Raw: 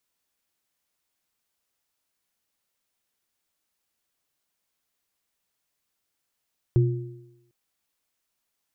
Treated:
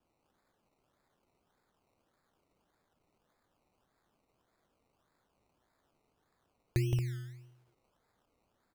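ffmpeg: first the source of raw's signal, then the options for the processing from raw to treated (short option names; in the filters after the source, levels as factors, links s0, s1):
-f lavfi -i "aevalsrc='0.2*pow(10,-3*t/0.83)*sin(2*PI*125*t)+0.0794*pow(10,-3*t/0.97)*sin(2*PI*352*t)':d=0.75:s=44100"
-filter_complex "[0:a]acompressor=threshold=0.0178:ratio=2,asplit=2[s0][s1];[s1]aecho=0:1:169.1|227.4:0.708|0.398[s2];[s0][s2]amix=inputs=2:normalize=0,acrusher=samples=21:mix=1:aa=0.000001:lfo=1:lforange=12.6:lforate=1.7"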